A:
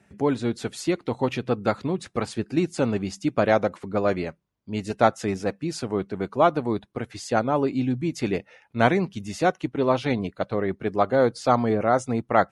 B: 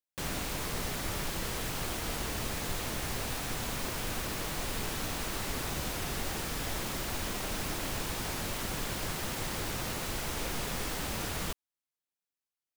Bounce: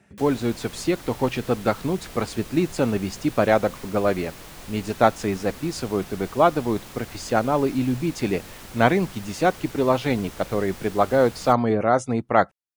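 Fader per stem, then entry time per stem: +1.5 dB, -6.0 dB; 0.00 s, 0.00 s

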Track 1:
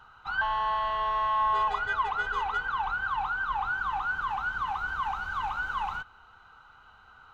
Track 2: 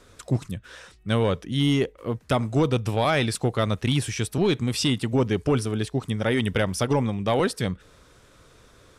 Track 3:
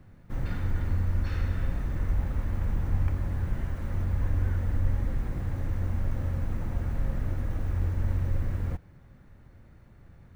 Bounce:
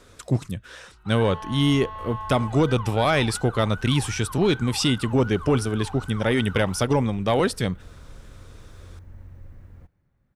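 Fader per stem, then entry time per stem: -9.0 dB, +1.5 dB, -16.0 dB; 0.80 s, 0.00 s, 1.10 s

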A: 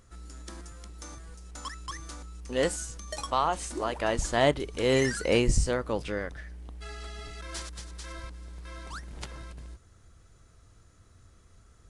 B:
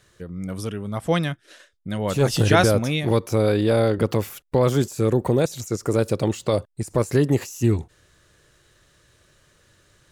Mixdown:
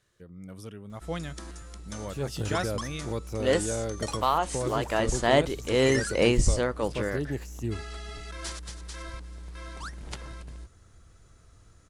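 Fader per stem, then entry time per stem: +1.5 dB, -13.0 dB; 0.90 s, 0.00 s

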